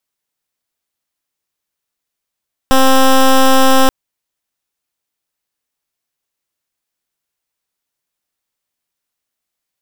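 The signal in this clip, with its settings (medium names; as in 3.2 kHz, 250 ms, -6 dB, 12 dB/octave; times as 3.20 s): pulse 264 Hz, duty 12% -7.5 dBFS 1.18 s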